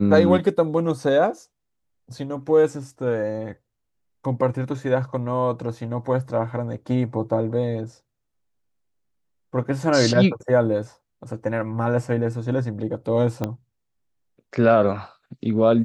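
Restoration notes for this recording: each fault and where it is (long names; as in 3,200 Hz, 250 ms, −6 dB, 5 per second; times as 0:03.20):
0:13.44: click −12 dBFS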